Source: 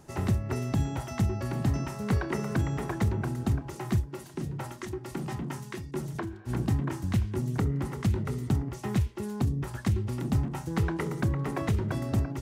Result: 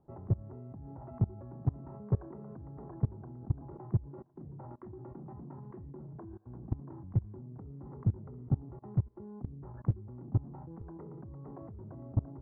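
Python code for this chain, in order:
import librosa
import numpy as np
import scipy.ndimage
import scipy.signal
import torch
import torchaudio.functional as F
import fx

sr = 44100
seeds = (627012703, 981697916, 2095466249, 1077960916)

y = scipy.signal.sosfilt(scipy.signal.butter(4, 1000.0, 'lowpass', fs=sr, output='sos'), x)
y = fx.level_steps(y, sr, step_db=23)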